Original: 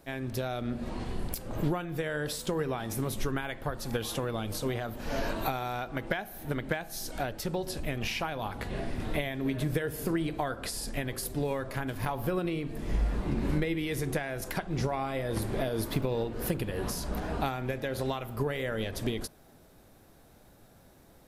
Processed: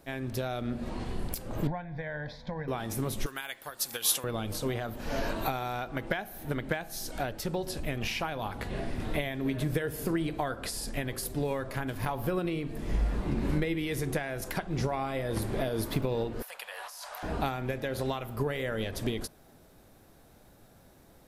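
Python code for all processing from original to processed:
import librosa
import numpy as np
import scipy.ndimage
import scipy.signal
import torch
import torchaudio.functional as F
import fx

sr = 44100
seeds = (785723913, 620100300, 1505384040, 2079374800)

y = fx.chain(x, sr, fx.lowpass(hz=2500.0, slope=12),
    fx.fixed_phaser(hz=1900.0, stages=8), at=(1.67, 2.68))
y = fx.chain(y, sr, fx.tilt_eq(slope=4.5),
    fx.upward_expand(threshold_db=-38.0, expansion=1.5), at=(3.26, 4.24))
y = fx.chain(y, sr, fx.cheby2_highpass(hz=350.0, order=4, stop_db=40),
    fx.over_compress(threshold_db=-43.0, ratio=-1.0), at=(16.42, 17.23))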